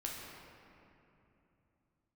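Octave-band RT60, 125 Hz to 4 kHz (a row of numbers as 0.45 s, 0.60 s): 4.4 s, 3.8 s, 3.1 s, 2.8 s, 2.5 s, 1.6 s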